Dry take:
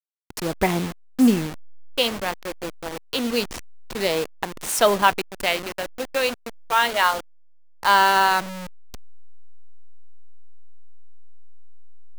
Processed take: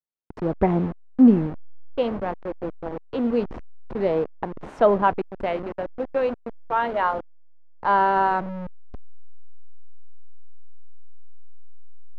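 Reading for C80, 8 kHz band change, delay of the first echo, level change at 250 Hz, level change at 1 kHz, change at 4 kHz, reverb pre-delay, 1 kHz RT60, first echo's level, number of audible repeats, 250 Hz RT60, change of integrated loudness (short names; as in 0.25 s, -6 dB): none, under -30 dB, none, +2.5 dB, -2.0 dB, -19.5 dB, none, none, none, none, none, -1.5 dB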